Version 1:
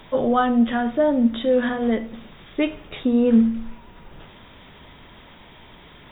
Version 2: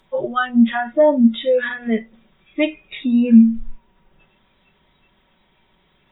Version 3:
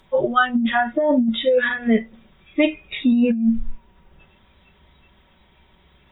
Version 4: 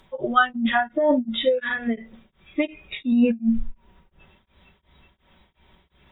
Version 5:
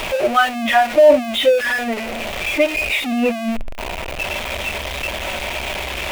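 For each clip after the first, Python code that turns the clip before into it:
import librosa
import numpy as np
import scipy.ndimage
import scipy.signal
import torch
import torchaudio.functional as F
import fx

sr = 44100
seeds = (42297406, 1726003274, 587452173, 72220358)

y1 = fx.noise_reduce_blind(x, sr, reduce_db=20)
y1 = y1 + 0.42 * np.pad(y1, (int(5.3 * sr / 1000.0), 0))[:len(y1)]
y1 = y1 * librosa.db_to_amplitude(5.0)
y2 = fx.peak_eq(y1, sr, hz=68.0, db=14.0, octaves=0.67)
y2 = fx.over_compress(y2, sr, threshold_db=-16.0, ratio=-1.0)
y3 = y2 * np.abs(np.cos(np.pi * 2.8 * np.arange(len(y2)) / sr))
y4 = y3 + 0.5 * 10.0 ** (-20.5 / 20.0) * np.sign(y3)
y4 = fx.graphic_eq_15(y4, sr, hz=(160, 630, 2500), db=(-9, 12, 11))
y4 = y4 * librosa.db_to_amplitude(-2.5)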